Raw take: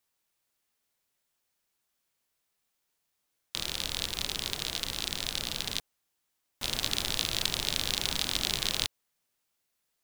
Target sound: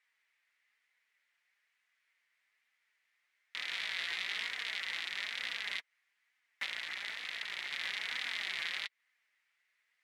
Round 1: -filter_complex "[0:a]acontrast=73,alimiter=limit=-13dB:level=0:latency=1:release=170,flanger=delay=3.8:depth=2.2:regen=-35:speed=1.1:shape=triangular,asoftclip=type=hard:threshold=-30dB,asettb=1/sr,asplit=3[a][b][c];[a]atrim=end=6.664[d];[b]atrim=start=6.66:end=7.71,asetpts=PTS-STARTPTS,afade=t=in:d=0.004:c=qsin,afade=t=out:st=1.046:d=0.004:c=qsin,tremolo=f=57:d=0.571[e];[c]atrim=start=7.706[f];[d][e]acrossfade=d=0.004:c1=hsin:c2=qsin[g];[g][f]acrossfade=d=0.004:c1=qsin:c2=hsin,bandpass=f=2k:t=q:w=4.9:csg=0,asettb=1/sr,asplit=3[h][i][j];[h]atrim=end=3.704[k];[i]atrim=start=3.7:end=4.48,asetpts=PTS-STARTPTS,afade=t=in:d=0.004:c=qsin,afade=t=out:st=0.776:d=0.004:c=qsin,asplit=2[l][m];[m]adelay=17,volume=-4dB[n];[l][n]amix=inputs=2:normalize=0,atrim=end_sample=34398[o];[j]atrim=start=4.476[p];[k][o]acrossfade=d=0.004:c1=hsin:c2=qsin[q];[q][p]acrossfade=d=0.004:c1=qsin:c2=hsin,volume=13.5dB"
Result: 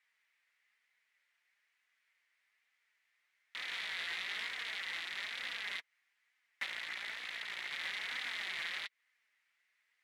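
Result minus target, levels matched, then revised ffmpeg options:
hard clip: distortion +8 dB
-filter_complex "[0:a]acontrast=73,alimiter=limit=-13dB:level=0:latency=1:release=170,flanger=delay=3.8:depth=2.2:regen=-35:speed=1.1:shape=triangular,asoftclip=type=hard:threshold=-23dB,asettb=1/sr,asplit=3[a][b][c];[a]atrim=end=6.664[d];[b]atrim=start=6.66:end=7.71,asetpts=PTS-STARTPTS,afade=t=in:d=0.004:c=qsin,afade=t=out:st=1.046:d=0.004:c=qsin,tremolo=f=57:d=0.571[e];[c]atrim=start=7.706[f];[d][e]acrossfade=d=0.004:c1=hsin:c2=qsin[g];[g][f]acrossfade=d=0.004:c1=qsin:c2=hsin,bandpass=f=2k:t=q:w=4.9:csg=0,asettb=1/sr,asplit=3[h][i][j];[h]atrim=end=3.704[k];[i]atrim=start=3.7:end=4.48,asetpts=PTS-STARTPTS,afade=t=in:d=0.004:c=qsin,afade=t=out:st=0.776:d=0.004:c=qsin,asplit=2[l][m];[m]adelay=17,volume=-4dB[n];[l][n]amix=inputs=2:normalize=0,atrim=end_sample=34398[o];[j]atrim=start=4.476[p];[k][o]acrossfade=d=0.004:c1=hsin:c2=qsin[q];[q][p]acrossfade=d=0.004:c1=qsin:c2=hsin,volume=13.5dB"

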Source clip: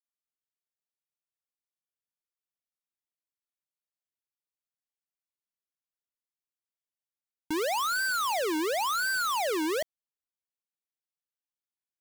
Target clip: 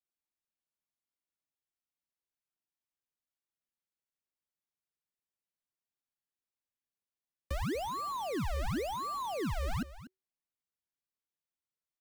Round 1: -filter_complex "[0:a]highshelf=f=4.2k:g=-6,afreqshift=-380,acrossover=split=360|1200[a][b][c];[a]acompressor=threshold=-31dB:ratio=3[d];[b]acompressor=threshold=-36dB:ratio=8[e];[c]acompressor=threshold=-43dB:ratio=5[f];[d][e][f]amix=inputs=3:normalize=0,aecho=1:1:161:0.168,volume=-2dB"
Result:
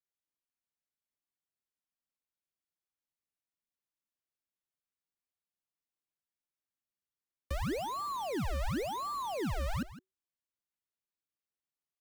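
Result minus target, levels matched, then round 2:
echo 81 ms early
-filter_complex "[0:a]highshelf=f=4.2k:g=-6,afreqshift=-380,acrossover=split=360|1200[a][b][c];[a]acompressor=threshold=-31dB:ratio=3[d];[b]acompressor=threshold=-36dB:ratio=8[e];[c]acompressor=threshold=-43dB:ratio=5[f];[d][e][f]amix=inputs=3:normalize=0,aecho=1:1:242:0.168,volume=-2dB"

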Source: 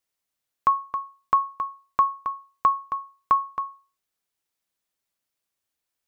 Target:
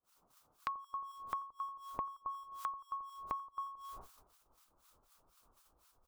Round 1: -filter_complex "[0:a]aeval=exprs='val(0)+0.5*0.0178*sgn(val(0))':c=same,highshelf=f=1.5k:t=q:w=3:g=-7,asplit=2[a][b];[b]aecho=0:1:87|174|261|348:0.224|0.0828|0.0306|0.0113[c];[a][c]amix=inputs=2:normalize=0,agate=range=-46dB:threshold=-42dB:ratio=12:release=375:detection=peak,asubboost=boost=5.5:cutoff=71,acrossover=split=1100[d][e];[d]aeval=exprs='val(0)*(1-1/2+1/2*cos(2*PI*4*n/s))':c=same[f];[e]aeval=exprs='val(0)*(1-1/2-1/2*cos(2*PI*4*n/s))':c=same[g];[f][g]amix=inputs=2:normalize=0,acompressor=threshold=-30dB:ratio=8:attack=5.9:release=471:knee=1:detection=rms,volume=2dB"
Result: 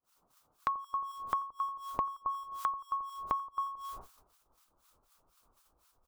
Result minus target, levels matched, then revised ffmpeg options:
compressor: peak gain reduction -7 dB
-filter_complex "[0:a]aeval=exprs='val(0)+0.5*0.0178*sgn(val(0))':c=same,highshelf=f=1.5k:t=q:w=3:g=-7,asplit=2[a][b];[b]aecho=0:1:87|174|261|348:0.224|0.0828|0.0306|0.0113[c];[a][c]amix=inputs=2:normalize=0,agate=range=-46dB:threshold=-42dB:ratio=12:release=375:detection=peak,asubboost=boost=5.5:cutoff=71,acrossover=split=1100[d][e];[d]aeval=exprs='val(0)*(1-1/2+1/2*cos(2*PI*4*n/s))':c=same[f];[e]aeval=exprs='val(0)*(1-1/2-1/2*cos(2*PI*4*n/s))':c=same[g];[f][g]amix=inputs=2:normalize=0,acompressor=threshold=-38dB:ratio=8:attack=5.9:release=471:knee=1:detection=rms,volume=2dB"

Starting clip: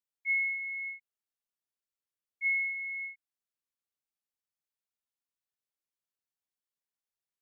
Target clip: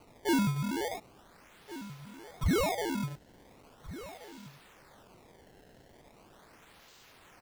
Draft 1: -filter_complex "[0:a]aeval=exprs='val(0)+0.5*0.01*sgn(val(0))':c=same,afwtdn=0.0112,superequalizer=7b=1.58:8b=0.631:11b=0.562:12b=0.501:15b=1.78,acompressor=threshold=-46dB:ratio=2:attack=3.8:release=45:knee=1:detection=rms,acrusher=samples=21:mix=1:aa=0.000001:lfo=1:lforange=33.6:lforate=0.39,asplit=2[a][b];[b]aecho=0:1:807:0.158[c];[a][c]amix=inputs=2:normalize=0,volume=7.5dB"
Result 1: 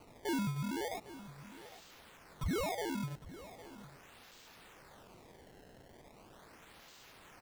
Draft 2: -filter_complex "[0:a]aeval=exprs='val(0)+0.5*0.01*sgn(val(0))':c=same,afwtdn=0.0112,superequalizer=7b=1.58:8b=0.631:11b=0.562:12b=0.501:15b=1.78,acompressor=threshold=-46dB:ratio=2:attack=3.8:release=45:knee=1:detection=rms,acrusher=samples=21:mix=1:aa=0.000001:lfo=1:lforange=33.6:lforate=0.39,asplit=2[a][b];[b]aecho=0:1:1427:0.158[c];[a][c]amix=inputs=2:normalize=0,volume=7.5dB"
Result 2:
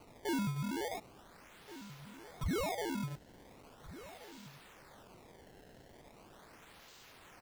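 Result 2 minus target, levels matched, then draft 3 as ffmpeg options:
compressor: peak gain reduction +8 dB
-filter_complex "[0:a]aeval=exprs='val(0)+0.5*0.01*sgn(val(0))':c=same,afwtdn=0.0112,superequalizer=7b=1.58:8b=0.631:11b=0.562:12b=0.501:15b=1.78,acrusher=samples=21:mix=1:aa=0.000001:lfo=1:lforange=33.6:lforate=0.39,asplit=2[a][b];[b]aecho=0:1:1427:0.158[c];[a][c]amix=inputs=2:normalize=0,volume=7.5dB"

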